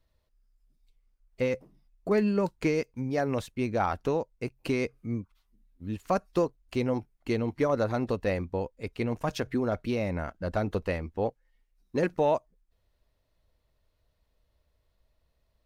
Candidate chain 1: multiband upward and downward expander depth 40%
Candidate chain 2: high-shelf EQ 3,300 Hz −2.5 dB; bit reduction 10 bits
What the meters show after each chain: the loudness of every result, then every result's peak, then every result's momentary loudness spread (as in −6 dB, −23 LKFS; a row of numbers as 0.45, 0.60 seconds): −30.0, −30.5 LKFS; −12.0, −14.5 dBFS; 11, 9 LU